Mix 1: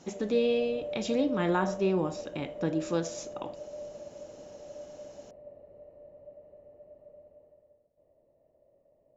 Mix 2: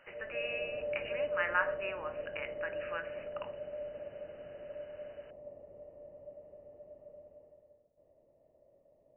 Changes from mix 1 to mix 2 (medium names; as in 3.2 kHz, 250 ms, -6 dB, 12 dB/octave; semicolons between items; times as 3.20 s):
speech: add resonant high-pass 1.6 kHz, resonance Q 2.1; master: add brick-wall FIR low-pass 3 kHz